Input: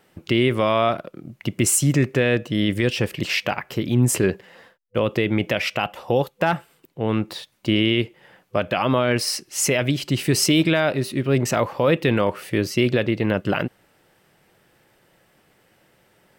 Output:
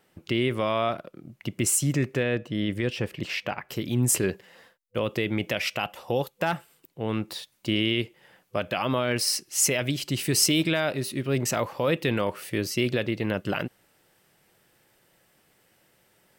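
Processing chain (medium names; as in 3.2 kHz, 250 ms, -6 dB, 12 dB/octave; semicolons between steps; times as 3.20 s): treble shelf 4.1 kHz +2.5 dB, from 2.23 s -5 dB, from 3.69 s +8.5 dB; trim -6.5 dB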